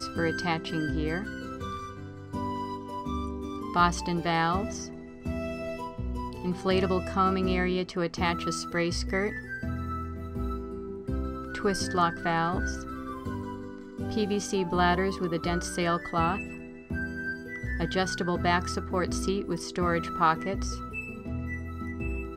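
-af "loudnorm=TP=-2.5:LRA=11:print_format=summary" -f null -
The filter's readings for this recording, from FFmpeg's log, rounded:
Input Integrated:    -30.1 LUFS
Input True Peak:      -9.7 dBTP
Input LRA:             3.0 LU
Input Threshold:     -40.2 LUFS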